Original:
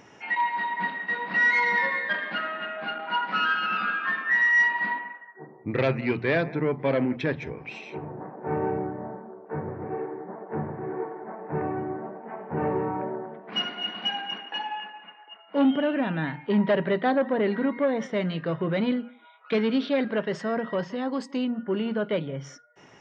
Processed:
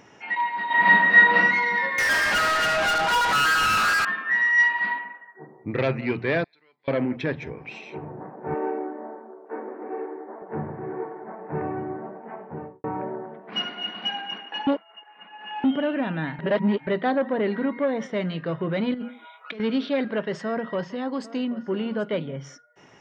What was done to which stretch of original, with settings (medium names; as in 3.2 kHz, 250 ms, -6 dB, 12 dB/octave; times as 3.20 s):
0.66–1.35 s: reverb throw, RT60 0.84 s, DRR -11.5 dB
1.98–4.05 s: overdrive pedal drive 30 dB, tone 5.8 kHz, clips at -15.5 dBFS
4.58–5.05 s: tilt shelf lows -4 dB, about 870 Hz
6.44–6.88 s: band-pass filter 4.2 kHz, Q 8.2
8.54–10.42 s: brick-wall FIR high-pass 220 Hz
12.29–12.84 s: studio fade out
14.67–15.64 s: reverse
16.39–16.87 s: reverse
18.94–19.60 s: compressor with a negative ratio -34 dBFS
20.46–22.37 s: delay 781 ms -17 dB